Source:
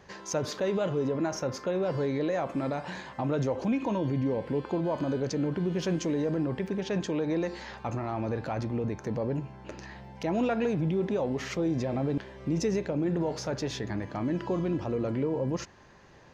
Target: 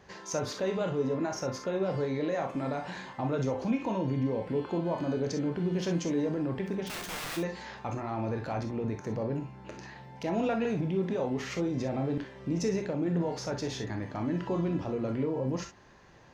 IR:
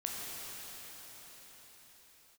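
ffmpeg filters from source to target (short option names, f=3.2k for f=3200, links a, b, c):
-filter_complex "[0:a]asplit=3[a][b][c];[a]afade=t=out:st=6.86:d=0.02[d];[b]aeval=exprs='(mod(37.6*val(0)+1,2)-1)/37.6':c=same,afade=t=in:st=6.86:d=0.02,afade=t=out:st=7.36:d=0.02[e];[c]afade=t=in:st=7.36:d=0.02[f];[d][e][f]amix=inputs=3:normalize=0[g];[1:a]atrim=start_sample=2205,atrim=end_sample=3087[h];[g][h]afir=irnorm=-1:irlink=0"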